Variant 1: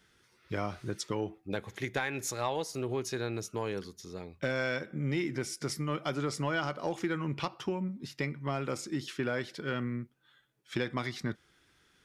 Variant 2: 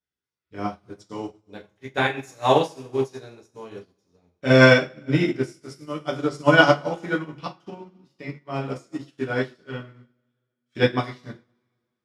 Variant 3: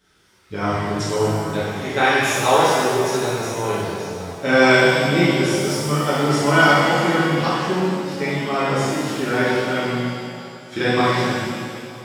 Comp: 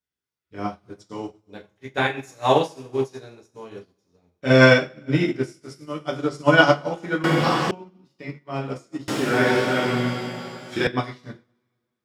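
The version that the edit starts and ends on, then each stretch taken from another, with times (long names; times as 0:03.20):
2
0:07.24–0:07.71: punch in from 3
0:09.08–0:10.87: punch in from 3
not used: 1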